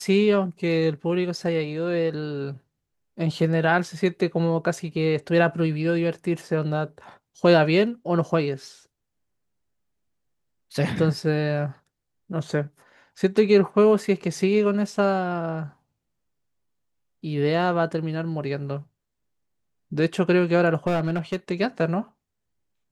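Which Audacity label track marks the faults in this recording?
20.870000	21.360000	clipped -19 dBFS

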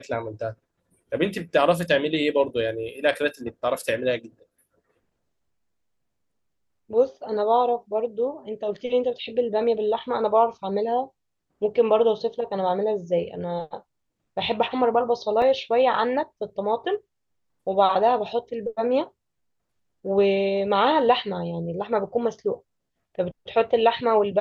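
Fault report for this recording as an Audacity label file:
15.420000	15.420000	dropout 2.6 ms

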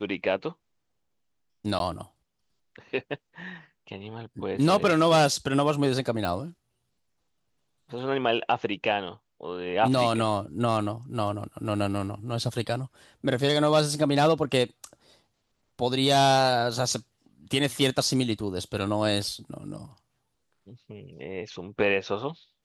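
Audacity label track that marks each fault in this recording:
1.790000	1.800000	dropout 12 ms
6.250000	6.250000	pop

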